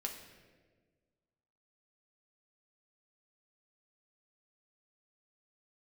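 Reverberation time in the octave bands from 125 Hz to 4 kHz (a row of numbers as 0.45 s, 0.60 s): 1.9 s, 1.9 s, 1.8 s, 1.2 s, 1.2 s, 1.0 s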